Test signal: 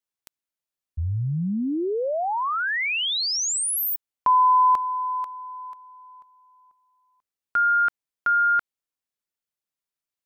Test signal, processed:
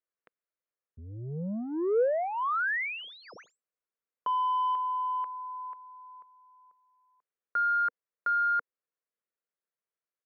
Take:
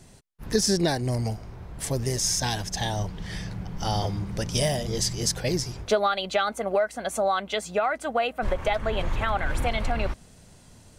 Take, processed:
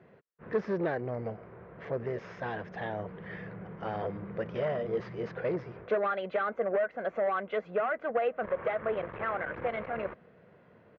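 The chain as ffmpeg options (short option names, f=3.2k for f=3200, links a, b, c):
-af "aresample=16000,asoftclip=type=tanh:threshold=-24dB,aresample=44100,highpass=220,equalizer=f=270:t=q:w=4:g=-8,equalizer=f=480:t=q:w=4:g=6,equalizer=f=840:t=q:w=4:g=-7,lowpass=f=2k:w=0.5412,lowpass=f=2k:w=1.3066"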